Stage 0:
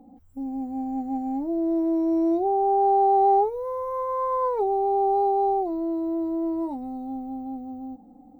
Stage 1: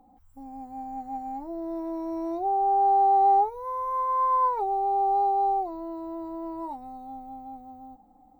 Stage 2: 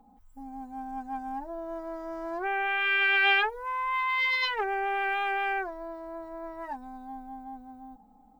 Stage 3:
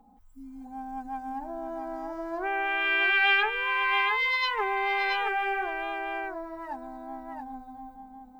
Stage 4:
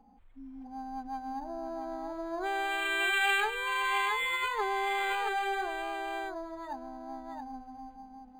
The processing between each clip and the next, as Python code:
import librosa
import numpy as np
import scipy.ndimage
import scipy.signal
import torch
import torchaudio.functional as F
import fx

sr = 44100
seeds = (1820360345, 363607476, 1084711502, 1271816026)

y1 = fx.graphic_eq_10(x, sr, hz=(125, 250, 500, 1000), db=(-7, -11, -8, 6))
y2 = fx.self_delay(y1, sr, depth_ms=0.56)
y2 = y2 + 0.66 * np.pad(y2, (int(4.7 * sr / 1000.0), 0))[:len(y2)]
y2 = y2 * 10.0 ** (-1.5 / 20.0)
y3 = fx.spec_repair(y2, sr, seeds[0], start_s=0.38, length_s=0.28, low_hz=280.0, high_hz=2000.0, source='both')
y3 = y3 + 10.0 ** (-5.0 / 20.0) * np.pad(y3, (int(675 * sr / 1000.0), 0))[:len(y3)]
y4 = np.interp(np.arange(len(y3)), np.arange(len(y3))[::8], y3[::8])
y4 = y4 * 10.0 ** (-2.0 / 20.0)